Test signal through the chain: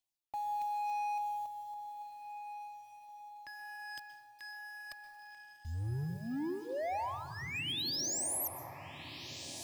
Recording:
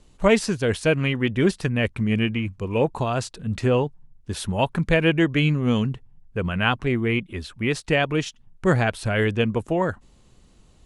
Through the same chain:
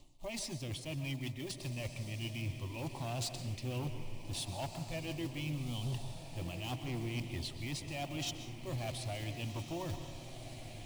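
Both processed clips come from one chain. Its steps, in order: block-companded coder 5-bit; peaking EQ 3.2 kHz +5 dB 1.8 oct; reverse; compression 16:1, threshold -33 dBFS; reverse; phaser 0.29 Hz, delay 2 ms, feedback 32%; saturation -29.5 dBFS; static phaser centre 300 Hz, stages 8; overload inside the chain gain 35.5 dB; on a send: echo that smears into a reverb 1583 ms, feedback 53%, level -9.5 dB; on the sum: plate-style reverb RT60 0.97 s, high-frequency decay 0.45×, pre-delay 115 ms, DRR 9.5 dB; trim +1 dB

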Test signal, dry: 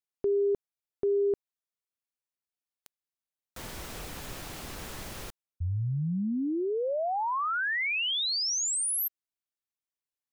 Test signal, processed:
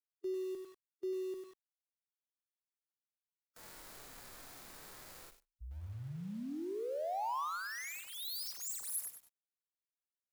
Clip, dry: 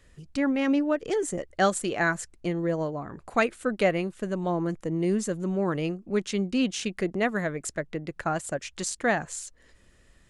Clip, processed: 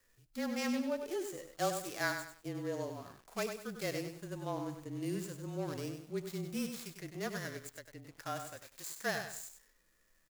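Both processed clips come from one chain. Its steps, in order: median filter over 15 samples; frequency shift -28 Hz; bass shelf 220 Hz -6 dB; harmonic-percussive split percussive -12 dB; pre-emphasis filter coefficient 0.9; on a send: feedback delay 74 ms, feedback 32%, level -23 dB; on the sum: bit-crushed delay 98 ms, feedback 35%, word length 11-bit, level -7 dB; trim +9.5 dB

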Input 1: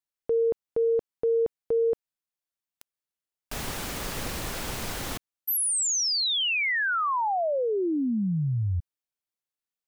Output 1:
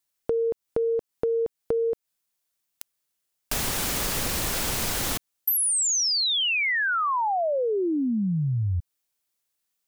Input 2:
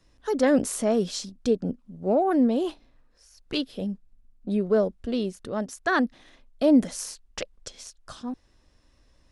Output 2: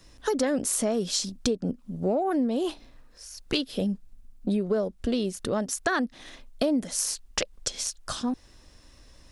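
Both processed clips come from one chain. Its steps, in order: treble shelf 4.1 kHz +7 dB; compression 6:1, threshold -31 dBFS; trim +7.5 dB

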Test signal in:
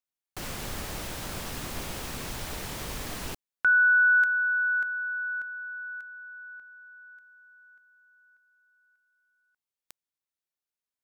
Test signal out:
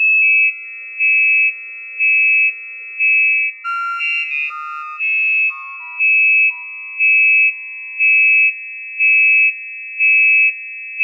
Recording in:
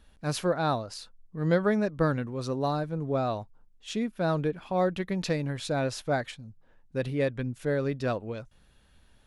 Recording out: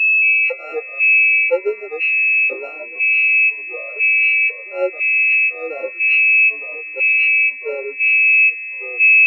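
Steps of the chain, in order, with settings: sorted samples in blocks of 32 samples; filtered feedback delay 138 ms, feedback 30%, low-pass 4.2 kHz, level -13.5 dB; whistle 2.6 kHz -27 dBFS; gain riding within 4 dB 0.5 s; high-pass 100 Hz 6 dB/octave; small resonant body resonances 380/1900/2800 Hz, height 9 dB, ringing for 45 ms; ever faster or slower copies 214 ms, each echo -2 st, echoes 3; dynamic bell 260 Hz, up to +5 dB, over -40 dBFS, Q 6.2; LFO high-pass square 1 Hz 510–2400 Hz; spectral contrast expander 2.5:1; trim +2.5 dB

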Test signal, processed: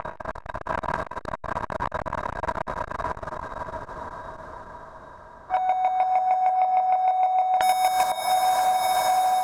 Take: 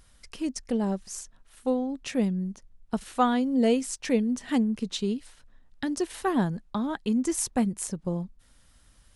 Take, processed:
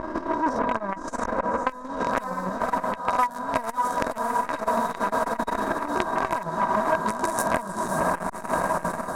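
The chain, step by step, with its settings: reverse spectral sustain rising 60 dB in 1.13 s; in parallel at -1 dB: peak limiter -18.5 dBFS; on the sum: companded quantiser 2-bit; square tremolo 6.5 Hz, depth 60%, duty 20%; peaking EQ 9.5 kHz +11 dB 2.1 oct; level-controlled noise filter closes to 1.7 kHz, open at -12 dBFS; resonant high shelf 1.8 kHz -13.5 dB, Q 3; on a send: echo that smears into a reverb 570 ms, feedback 56%, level -8 dB; on the sum: level rider gain up to 4 dB; small resonant body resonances 640/970/1600/3800 Hz, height 16 dB, ringing for 65 ms; compression 8:1, threshold -22 dBFS; transformer saturation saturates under 1.3 kHz; trim +4 dB

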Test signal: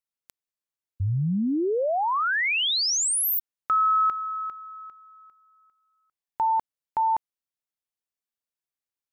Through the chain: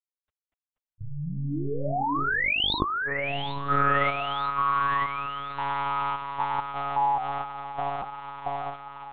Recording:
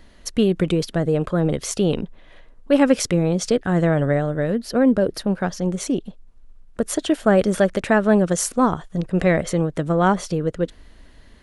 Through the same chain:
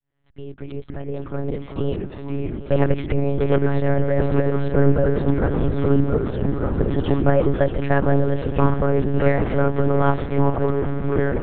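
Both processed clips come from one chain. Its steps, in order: fade-in on the opening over 2.85 s; in parallel at -5.5 dB: hard clipper -12.5 dBFS; on the sum: distance through air 280 m; ever faster or slower copies 178 ms, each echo -3 st, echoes 3; on a send: echo that smears into a reverb 794 ms, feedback 76%, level -13 dB; on the sum: monotone LPC vocoder at 8 kHz 140 Hz; trim -3.5 dB

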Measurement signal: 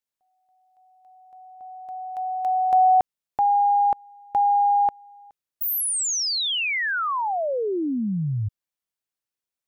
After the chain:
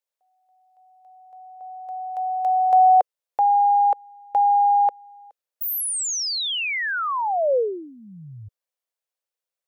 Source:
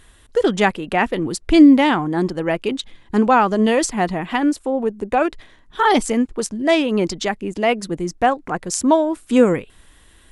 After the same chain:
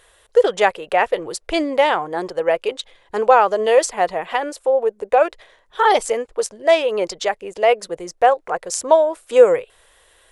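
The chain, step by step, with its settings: resonant low shelf 360 Hz -11.5 dB, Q 3; trim -1 dB

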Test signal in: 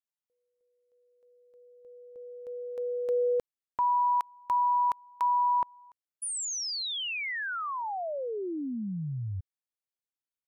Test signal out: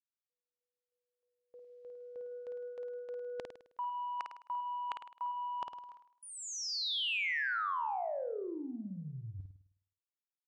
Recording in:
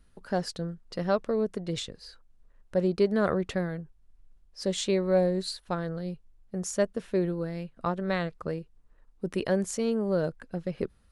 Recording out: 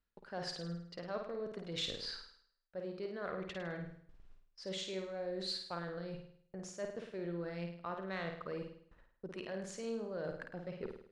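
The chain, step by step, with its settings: reverse; compression 16:1, threshold -41 dBFS; reverse; low-pass 4.4 kHz 12 dB/octave; saturation -31.5 dBFS; bass shelf 410 Hz -11 dB; gate with hold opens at -59 dBFS, closes at -63 dBFS, hold 14 ms, range -24 dB; on a send: flutter echo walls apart 9 m, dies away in 0.59 s; on the sum: trim +8 dB

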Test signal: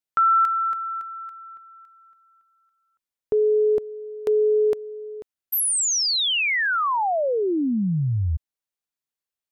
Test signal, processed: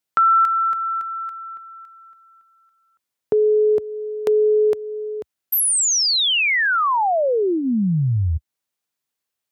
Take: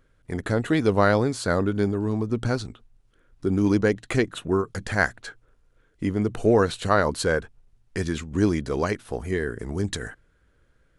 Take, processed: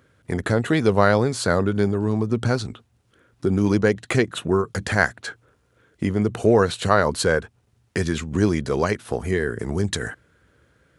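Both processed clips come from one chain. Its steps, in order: high-pass 72 Hz 24 dB/octave; dynamic bell 290 Hz, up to -7 dB, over -43 dBFS, Q 7.6; in parallel at +1 dB: compression, threshold -31 dBFS; on the sum: trim +1 dB

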